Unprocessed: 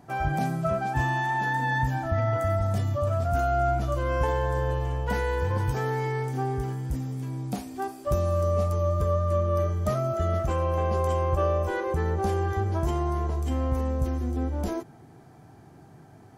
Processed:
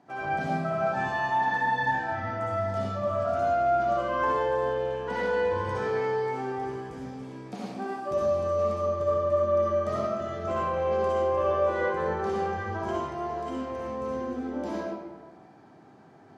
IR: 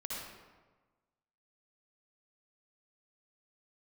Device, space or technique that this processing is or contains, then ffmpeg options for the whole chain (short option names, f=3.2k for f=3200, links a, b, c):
supermarket ceiling speaker: -filter_complex "[0:a]highpass=230,lowpass=5.1k[a];[1:a]atrim=start_sample=2205[b];[a][b]afir=irnorm=-1:irlink=0"